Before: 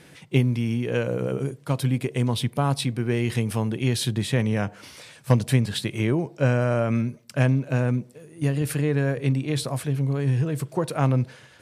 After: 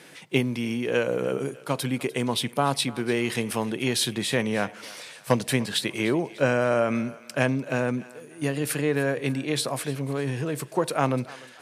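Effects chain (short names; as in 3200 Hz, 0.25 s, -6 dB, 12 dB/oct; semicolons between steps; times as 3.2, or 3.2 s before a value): HPF 200 Hz 12 dB/oct; low shelf 350 Hz -5 dB; thinning echo 0.297 s, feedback 44%, high-pass 620 Hz, level -18 dB; gain +3.5 dB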